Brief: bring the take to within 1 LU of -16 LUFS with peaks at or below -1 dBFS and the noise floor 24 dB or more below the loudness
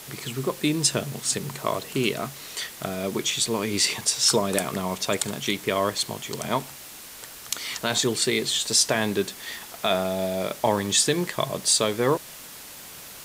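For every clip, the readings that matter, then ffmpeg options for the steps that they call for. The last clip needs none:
noise floor -42 dBFS; noise floor target -49 dBFS; loudness -24.5 LUFS; peak -7.0 dBFS; loudness target -16.0 LUFS
-> -af "afftdn=nr=7:nf=-42"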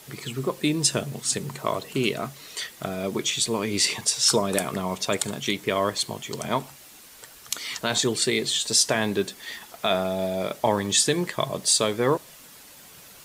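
noise floor -48 dBFS; noise floor target -49 dBFS
-> -af "afftdn=nr=6:nf=-48"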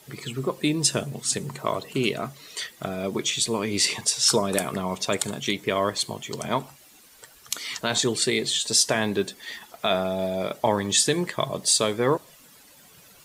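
noise floor -53 dBFS; loudness -24.5 LUFS; peak -6.5 dBFS; loudness target -16.0 LUFS
-> -af "volume=8.5dB,alimiter=limit=-1dB:level=0:latency=1"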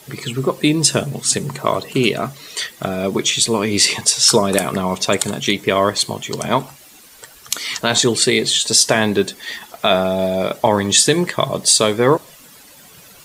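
loudness -16.5 LUFS; peak -1.0 dBFS; noise floor -44 dBFS

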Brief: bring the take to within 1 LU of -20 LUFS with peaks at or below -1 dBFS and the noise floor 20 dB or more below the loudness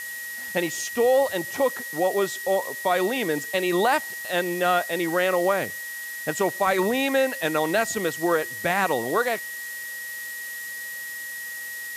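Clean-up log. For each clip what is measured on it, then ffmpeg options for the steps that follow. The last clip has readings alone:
steady tone 1900 Hz; tone level -33 dBFS; noise floor -35 dBFS; noise floor target -45 dBFS; loudness -25.0 LUFS; peak -9.0 dBFS; loudness target -20.0 LUFS
-> -af "bandreject=f=1.9k:w=30"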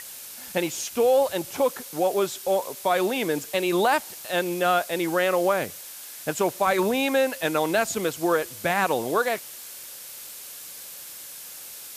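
steady tone none; noise floor -41 dBFS; noise floor target -45 dBFS
-> -af "afftdn=nr=6:nf=-41"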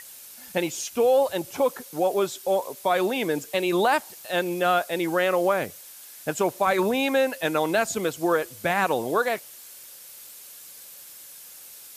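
noise floor -45 dBFS; loudness -24.5 LUFS; peak -9.5 dBFS; loudness target -20.0 LUFS
-> -af "volume=4.5dB"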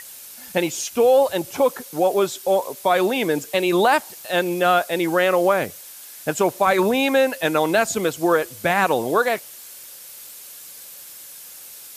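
loudness -20.0 LUFS; peak -5.0 dBFS; noise floor -41 dBFS

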